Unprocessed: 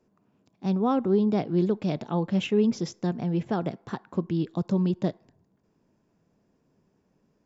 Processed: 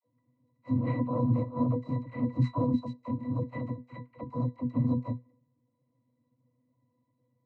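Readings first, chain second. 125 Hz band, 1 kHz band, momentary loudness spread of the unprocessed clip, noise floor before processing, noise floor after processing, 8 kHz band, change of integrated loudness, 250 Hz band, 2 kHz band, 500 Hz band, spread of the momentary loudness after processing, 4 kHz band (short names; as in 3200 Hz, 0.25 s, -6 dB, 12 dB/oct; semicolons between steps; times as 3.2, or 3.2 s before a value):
0.0 dB, -5.5 dB, 9 LU, -70 dBFS, -77 dBFS, n/a, -4.5 dB, -5.0 dB, -8.0 dB, -10.0 dB, 11 LU, under -15 dB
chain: noise vocoder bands 4; octave resonator B, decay 0.15 s; dispersion lows, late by 45 ms, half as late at 450 Hz; gain +4.5 dB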